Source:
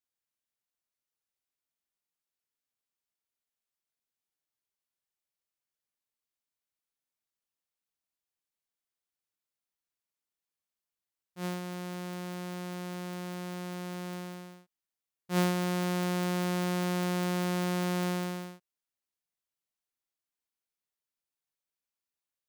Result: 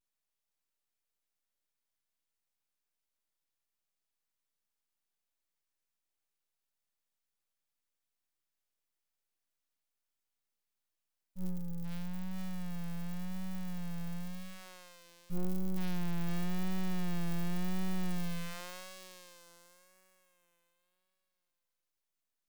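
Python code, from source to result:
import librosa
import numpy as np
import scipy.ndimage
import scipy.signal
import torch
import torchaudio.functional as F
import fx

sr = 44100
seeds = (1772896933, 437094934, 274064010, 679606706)

y = fx.echo_thinned(x, sr, ms=473, feedback_pct=46, hz=1100.0, wet_db=-8.0)
y = 10.0 ** (-29.5 / 20.0) * np.tanh(y / 10.0 ** (-29.5 / 20.0))
y = fx.vibrato(y, sr, rate_hz=0.91, depth_cents=69.0)
y = np.abs(y)
y = F.gain(torch.from_numpy(y), 4.0).numpy()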